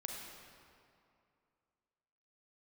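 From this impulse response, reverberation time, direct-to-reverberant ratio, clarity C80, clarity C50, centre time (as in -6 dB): 2.5 s, -0.5 dB, 2.0 dB, 0.5 dB, 0.1 s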